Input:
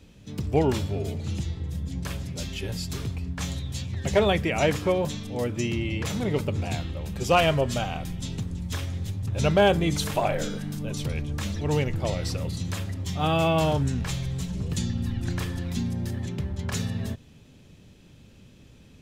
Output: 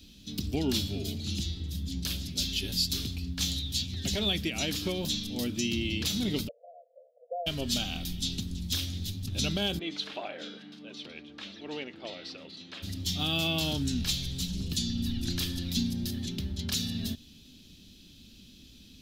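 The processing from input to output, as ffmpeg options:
-filter_complex "[0:a]asplit=3[s0][s1][s2];[s0]afade=t=out:st=6.47:d=0.02[s3];[s1]asuperpass=centerf=580:order=20:qfactor=2.3,afade=t=in:st=6.47:d=0.02,afade=t=out:st=7.46:d=0.02[s4];[s2]afade=t=in:st=7.46:d=0.02[s5];[s3][s4][s5]amix=inputs=3:normalize=0,asplit=3[s6][s7][s8];[s6]afade=t=out:st=9.78:d=0.02[s9];[s7]asuperpass=centerf=950:order=4:qfactor=0.52,afade=t=in:st=9.78:d=0.02,afade=t=out:st=12.82:d=0.02[s10];[s8]afade=t=in:st=12.82:d=0.02[s11];[s9][s10][s11]amix=inputs=3:normalize=0,highshelf=f=2200:g=11.5,alimiter=limit=0.2:level=0:latency=1:release=215,equalizer=f=125:t=o:w=1:g=-11,equalizer=f=250:t=o:w=1:g=6,equalizer=f=500:t=o:w=1:g=-11,equalizer=f=1000:t=o:w=1:g=-12,equalizer=f=2000:t=o:w=1:g=-10,equalizer=f=4000:t=o:w=1:g=7,equalizer=f=8000:t=o:w=1:g=-10"

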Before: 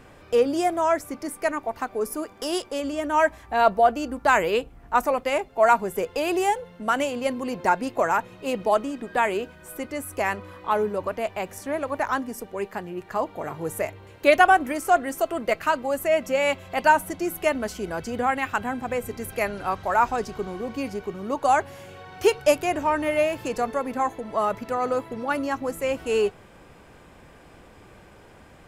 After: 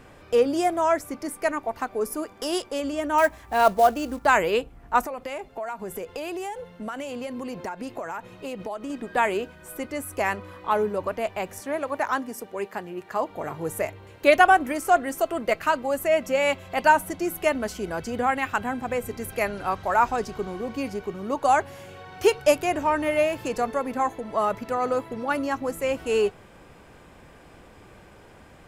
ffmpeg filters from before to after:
-filter_complex "[0:a]asettb=1/sr,asplit=3[s0][s1][s2];[s0]atrim=end=3.184[s3];[s1]atrim=start=3.18:end=4.26,asetpts=PTS-STARTPTS,afade=t=in:d=0.004:c=qsin,afade=t=out:st=1.076:d=0.004:c=qsin,acrusher=bits=5:mode=log:mix=0:aa=0.000001[s4];[s2]atrim=start=4.256[s5];[s3][s4]acrossfade=d=0.004:c1=hsin:c2=qsin[s6];[s6][s5]acrossfade=d=0.004:c1=qsin:c2=hsin,asettb=1/sr,asplit=3[s7][s8][s9];[s7]atrim=end=5.004[s10];[s8]atrim=start=5:end=8.9,asetpts=PTS-STARTPTS,afade=t=in:d=0.004:c=qsin,afade=t=out:st=3.896:d=0.004:c=qsin,acompressor=threshold=0.0355:ratio=8:attack=3.2:release=140:knee=1:detection=peak[s11];[s9]atrim=start=8.896[s12];[s10][s11]acrossfade=d=0.004:c1=hsin:c2=qsin[s13];[s13][s12]acrossfade=d=0.004:c1=qsin:c2=hsin,asettb=1/sr,asplit=3[s14][s15][s16];[s14]atrim=end=11.604[s17];[s15]atrim=start=11.6:end=13.3,asetpts=PTS-STARTPTS,afade=t=in:d=0.004:c=qsin,afade=t=out:st=1.696:d=0.004:c=qsin,highpass=f=200:p=1[s18];[s16]atrim=start=13.296[s19];[s17][s18]acrossfade=d=0.004:c1=hsin:c2=qsin[s20];[s20][s19]acrossfade=d=0.004:c1=qsin:c2=hsin"

